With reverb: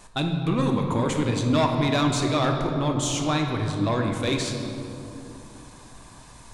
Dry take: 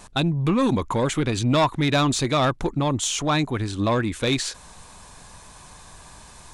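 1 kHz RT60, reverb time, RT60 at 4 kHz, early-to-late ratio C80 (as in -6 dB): 2.7 s, 3.0 s, 1.6 s, 5.0 dB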